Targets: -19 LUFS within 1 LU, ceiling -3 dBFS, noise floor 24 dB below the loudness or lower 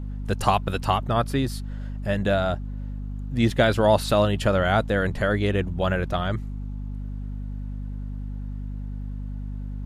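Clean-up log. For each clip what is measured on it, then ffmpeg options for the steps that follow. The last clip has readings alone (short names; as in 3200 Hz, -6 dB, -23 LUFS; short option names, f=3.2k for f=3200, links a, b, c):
hum 50 Hz; harmonics up to 250 Hz; hum level -29 dBFS; loudness -25.5 LUFS; peak -5.0 dBFS; loudness target -19.0 LUFS
-> -af "bandreject=f=50:t=h:w=4,bandreject=f=100:t=h:w=4,bandreject=f=150:t=h:w=4,bandreject=f=200:t=h:w=4,bandreject=f=250:t=h:w=4"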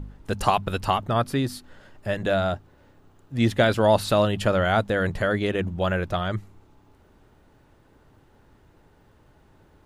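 hum none; loudness -24.0 LUFS; peak -5.0 dBFS; loudness target -19.0 LUFS
-> -af "volume=5dB,alimiter=limit=-3dB:level=0:latency=1"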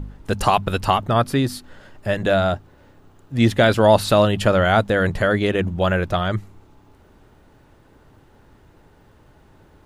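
loudness -19.0 LUFS; peak -3.0 dBFS; noise floor -53 dBFS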